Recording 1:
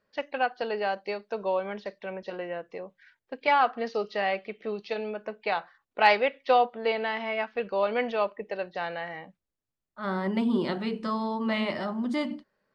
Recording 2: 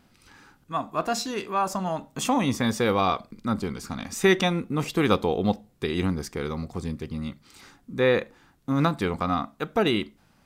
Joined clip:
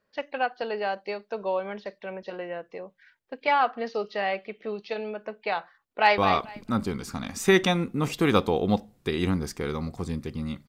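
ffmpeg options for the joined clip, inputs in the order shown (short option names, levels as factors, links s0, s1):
-filter_complex "[0:a]apad=whole_dur=10.68,atrim=end=10.68,atrim=end=6.182[s0];[1:a]atrim=start=2.938:end=7.44[s1];[s0][s1]acrossfade=d=0.004:c1=hsin:c2=hsin,asplit=2[s2][s3];[s3]afade=t=in:st=5.92:d=0.01,afade=t=out:st=6.18:d=0.01,aecho=0:1:220|440|660:0.334965|0.0669931|0.0133986[s4];[s2][s4]amix=inputs=2:normalize=0"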